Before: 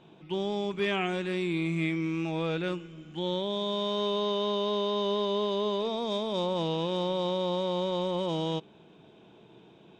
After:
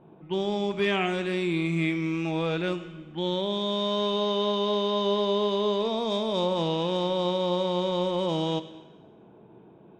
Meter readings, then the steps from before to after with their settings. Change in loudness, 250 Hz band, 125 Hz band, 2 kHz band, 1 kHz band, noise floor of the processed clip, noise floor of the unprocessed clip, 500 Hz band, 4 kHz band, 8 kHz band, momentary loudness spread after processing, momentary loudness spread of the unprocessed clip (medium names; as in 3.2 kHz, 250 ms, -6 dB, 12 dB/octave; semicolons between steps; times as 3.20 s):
+3.0 dB, +3.0 dB, +3.0 dB, +3.5 dB, +3.5 dB, -52 dBFS, -56 dBFS, +3.0 dB, +3.0 dB, no reading, 5 LU, 4 LU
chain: level-controlled noise filter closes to 1 kHz, open at -28.5 dBFS; Schroeder reverb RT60 1.1 s, combs from 28 ms, DRR 12 dB; trim +3 dB